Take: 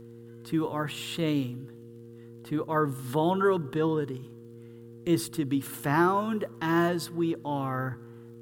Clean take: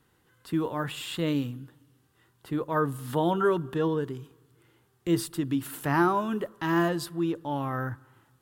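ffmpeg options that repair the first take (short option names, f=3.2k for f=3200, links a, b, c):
-af "adeclick=t=4,bandreject=f=116.9:t=h:w=4,bandreject=f=233.8:t=h:w=4,bandreject=f=350.7:t=h:w=4,bandreject=f=467.6:t=h:w=4"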